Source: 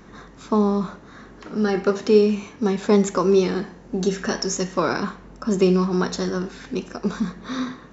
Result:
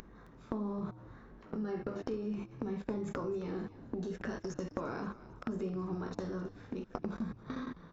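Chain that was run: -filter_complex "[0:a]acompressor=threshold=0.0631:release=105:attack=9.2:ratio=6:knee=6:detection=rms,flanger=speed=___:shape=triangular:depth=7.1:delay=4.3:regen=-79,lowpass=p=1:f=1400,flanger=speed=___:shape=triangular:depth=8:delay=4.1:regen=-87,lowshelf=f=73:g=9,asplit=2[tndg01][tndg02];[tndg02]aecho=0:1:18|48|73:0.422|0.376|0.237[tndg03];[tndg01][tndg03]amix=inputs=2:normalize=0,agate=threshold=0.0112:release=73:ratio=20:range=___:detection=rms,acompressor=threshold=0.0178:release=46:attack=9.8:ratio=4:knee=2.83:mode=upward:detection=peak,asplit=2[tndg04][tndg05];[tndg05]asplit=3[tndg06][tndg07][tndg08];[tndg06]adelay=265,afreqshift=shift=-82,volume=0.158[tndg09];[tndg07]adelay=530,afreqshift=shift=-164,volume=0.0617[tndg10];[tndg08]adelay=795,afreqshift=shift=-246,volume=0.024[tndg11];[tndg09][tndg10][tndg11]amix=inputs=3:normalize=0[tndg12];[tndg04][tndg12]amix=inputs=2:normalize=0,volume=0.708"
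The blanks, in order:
0.69, 1.4, 0.00355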